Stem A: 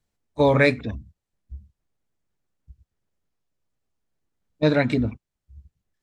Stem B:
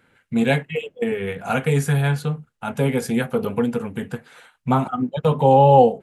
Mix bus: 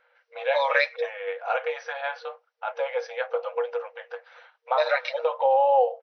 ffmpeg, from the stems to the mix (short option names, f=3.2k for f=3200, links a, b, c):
-filter_complex "[0:a]aecho=1:1:6.4:0.67,adelay=150,volume=1.5dB[a];[1:a]highshelf=f=2.6k:g=-11,volume=0dB[b];[a][b]amix=inputs=2:normalize=0,afftfilt=real='re*between(b*sr/4096,470,6100)':imag='im*between(b*sr/4096,470,6100)':win_size=4096:overlap=0.75,acompressor=threshold=-21dB:ratio=2"